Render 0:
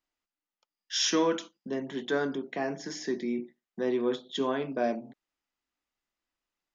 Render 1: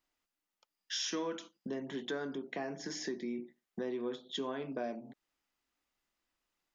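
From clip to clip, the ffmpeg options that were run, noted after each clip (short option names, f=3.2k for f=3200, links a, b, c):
-af "acompressor=threshold=-42dB:ratio=3,volume=3dB"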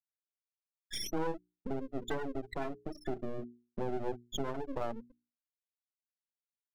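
-af "afftfilt=real='re*gte(hypot(re,im),0.0447)':imag='im*gte(hypot(re,im),0.0447)':win_size=1024:overlap=0.75,aeval=exprs='max(val(0),0)':c=same,bandreject=f=60:t=h:w=6,bandreject=f=120:t=h:w=6,bandreject=f=180:t=h:w=6,bandreject=f=240:t=h:w=6,bandreject=f=300:t=h:w=6,bandreject=f=360:t=h:w=6,bandreject=f=420:t=h:w=6,volume=7dB"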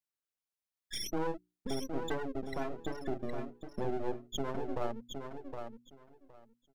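-af "aecho=1:1:765|1530|2295:0.473|0.0804|0.0137"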